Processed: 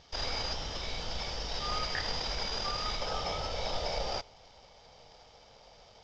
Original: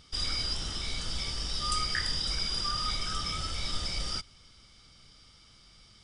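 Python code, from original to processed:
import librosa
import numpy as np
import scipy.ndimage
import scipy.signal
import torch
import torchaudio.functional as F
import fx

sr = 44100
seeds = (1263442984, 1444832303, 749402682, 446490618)

y = fx.cvsd(x, sr, bps=32000)
y = fx.band_shelf(y, sr, hz=640.0, db=fx.steps((0.0, 8.5), (3.0, 15.5)), octaves=1.3)
y = F.gain(torch.from_numpy(y), -3.0).numpy()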